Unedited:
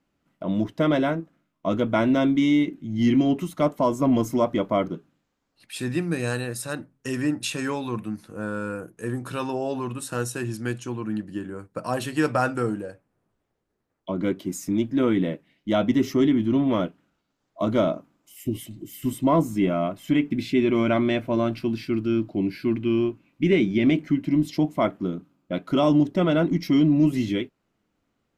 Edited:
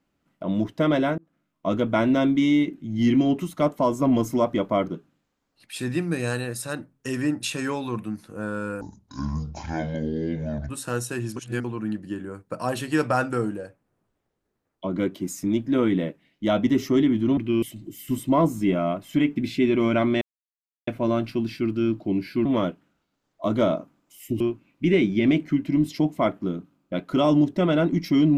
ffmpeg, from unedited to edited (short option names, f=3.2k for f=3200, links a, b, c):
-filter_complex "[0:a]asplit=11[a][b][c][d][e][f][g][h][i][j][k];[a]atrim=end=1.18,asetpts=PTS-STARTPTS,afade=t=out:st=1.176:d=0.004:c=hsin[l];[b]atrim=start=1.18:end=8.814,asetpts=PTS-STARTPTS,afade=t=in:d=0.49:c=qsin[m];[c]atrim=start=8.81:end=9.94,asetpts=PTS-STARTPTS,asetrate=26460,aresample=44100[n];[d]atrim=start=9.936:end=10.612[o];[e]atrim=start=10.608:end=10.892,asetpts=PTS-STARTPTS,areverse[p];[f]atrim=start=10.888:end=16.622[q];[g]atrim=start=22.738:end=22.992[r];[h]atrim=start=18.568:end=21.16,asetpts=PTS-STARTPTS,afade=t=out:st=2.588:d=0.004:c=hsin,apad=pad_dur=0.66[s];[i]atrim=start=21.16:end=22.742,asetpts=PTS-STARTPTS,afade=t=in:d=0.004:c=hsin[t];[j]atrim=start=16.618:end=18.572[u];[k]atrim=start=22.988[v];[l][m]concat=n=2:v=0:a=1[w];[w][n]acrossfade=d=0.004:c1=hsin:c2=hsin[x];[x][o]acrossfade=d=0.004:c1=hsin:c2=hsin[y];[y][p]acrossfade=d=0.004:c1=hsin:c2=hsin[z];[z][q]acrossfade=d=0.004:c1=hsin:c2=hsin[aa];[aa][r]acrossfade=d=0.004:c1=hsin:c2=hsin[ab];[s][t]concat=n=2:v=0:a=1[ac];[ab][ac]acrossfade=d=0.004:c1=hsin:c2=hsin[ad];[ad][u]acrossfade=d=0.004:c1=hsin:c2=hsin[ae];[ae][v]acrossfade=d=0.004:c1=hsin:c2=hsin"